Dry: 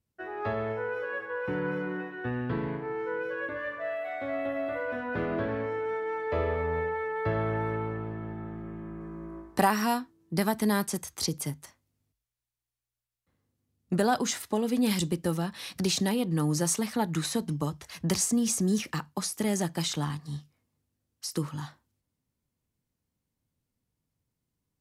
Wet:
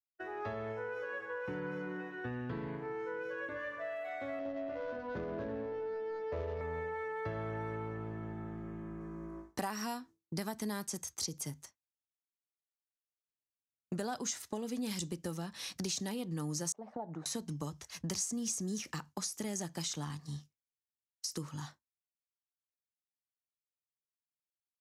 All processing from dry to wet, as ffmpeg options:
-filter_complex "[0:a]asettb=1/sr,asplit=3[a][b][c];[a]atrim=end=4.394[d];[b]atrim=start=4.39:end=6.61,asetpts=PTS-STARTPTS,afade=t=in:d=0.004:c=qsin,afade=t=out:st=2.216:d=0.004:c=qsin,adynamicsmooth=sensitivity=1.5:basefreq=850,asplit=2[e][f];[f]adelay=14,volume=-7.5dB[g];[e][g]amix=inputs=2:normalize=0,atrim=end_sample=97902[h];[c]atrim=start=6.606[i];[d][h]acrossfade=d=0.004:c1=hsin:c2=qsin[j];[j][i]acrossfade=d=0.004:c1=qsin:c2=hsin,asettb=1/sr,asplit=3[k][l][m];[k]atrim=end=16.724[n];[l]atrim=start=16.72:end=17.26,asetpts=PTS-STARTPTS,afade=t=in:d=0.004:c=qsin,afade=t=out:st=0.536:d=0.004:c=qsin,aemphasis=mode=production:type=bsi,acompressor=threshold=-31dB:ratio=6:attack=3.2:release=140:knee=1:detection=peak,lowpass=f=700:t=q:w=3.4[o];[m]atrim=start=17.256[p];[n][o]acrossfade=d=0.004:c1=hsin:c2=qsin[q];[q][p]acrossfade=d=0.004:c1=qsin:c2=hsin,agate=range=-33dB:threshold=-40dB:ratio=3:detection=peak,equalizer=f=6.3k:w=1.7:g=9,acompressor=threshold=-35dB:ratio=2.5,volume=-3.5dB"

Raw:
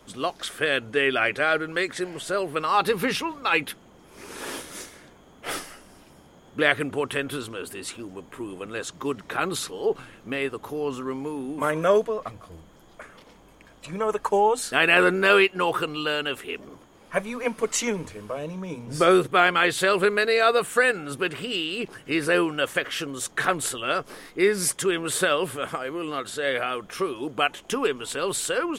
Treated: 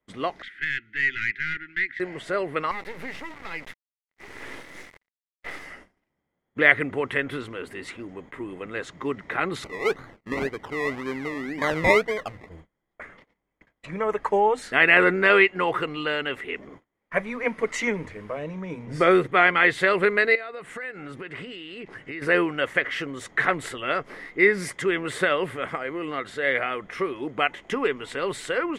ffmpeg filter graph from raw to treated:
-filter_complex "[0:a]asettb=1/sr,asplit=3[a][b][c];[a]atrim=end=0.424[d];[b]atrim=start=0.42:end=2,asetpts=PTS-STARTPTS,afade=t=in:d=0.004:c=qsin,afade=t=out:st=1.576:d=0.004:c=qsin,acrossover=split=520 3700:gain=0.158 1 0.0891[e][f][g];[e][f][g]amix=inputs=3:normalize=0,aeval=exprs='(tanh(8.91*val(0)+0.6)-tanh(0.6))/8.91':c=same,asuperstop=centerf=730:order=12:qfactor=0.64[h];[c]atrim=start=1.996[i];[d][h]acrossfade=d=0.004:c1=hsin:c2=qsin[j];[j][i]acrossfade=d=0.004:c1=qsin:c2=hsin,asettb=1/sr,asplit=3[k][l][m];[k]atrim=end=2.714[n];[l]atrim=start=2.71:end=5.65,asetpts=PTS-STARTPTS,afade=t=in:d=0.004:c=qsin,afade=t=out:st=2.936:d=0.004:c=qsin,bandreject=f=50:t=h:w=6,bandreject=f=100:t=h:w=6,bandreject=f=150:t=h:w=6,bandreject=f=200:t=h:w=6,acompressor=threshold=-30dB:ratio=4:attack=3.2:release=140:knee=1:detection=peak,acrusher=bits=4:dc=4:mix=0:aa=0.000001[o];[m]atrim=start=5.646[p];[n][o]acrossfade=d=0.004:c1=hsin:c2=qsin[q];[q][p]acrossfade=d=0.004:c1=qsin:c2=hsin,asettb=1/sr,asplit=3[r][s][t];[r]atrim=end=9.644[u];[s]atrim=start=9.64:end=12.48,asetpts=PTS-STARTPTS,afade=t=in:d=0.004:c=qsin,afade=t=out:st=2.836:d=0.004:c=qsin,highshelf=f=4k:g=-7,acrusher=samples=23:mix=1:aa=0.000001:lfo=1:lforange=13.8:lforate=1.9[v];[t]atrim=start=12.476[w];[u][v]acrossfade=d=0.004:c1=hsin:c2=qsin[x];[x][w]acrossfade=d=0.004:c1=qsin:c2=hsin,asettb=1/sr,asplit=3[y][z][aa];[y]atrim=end=20.354[ab];[z]atrim=start=20.35:end=22.22,asetpts=PTS-STARTPTS,afade=t=in:d=0.004:c=qsin,afade=t=out:st=1.866:d=0.004:c=qsin,lowpass=11k,acompressor=threshold=-33dB:ratio=8:attack=3.2:release=140:knee=1:detection=peak[ac];[aa]atrim=start=22.216[ad];[ab][ac]acrossfade=d=0.004:c1=hsin:c2=qsin[ae];[ae][ad]acrossfade=d=0.004:c1=qsin:c2=hsin,equalizer=f=2k:t=o:w=0.29:g=15,agate=range=-28dB:threshold=-45dB:ratio=16:detection=peak,aemphasis=mode=reproduction:type=75fm,volume=-1dB"

